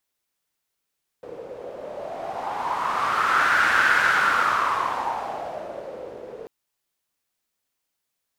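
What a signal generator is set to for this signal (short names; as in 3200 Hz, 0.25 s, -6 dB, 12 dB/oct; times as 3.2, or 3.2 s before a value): wind-like swept noise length 5.24 s, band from 480 Hz, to 1500 Hz, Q 5.4, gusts 1, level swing 19.5 dB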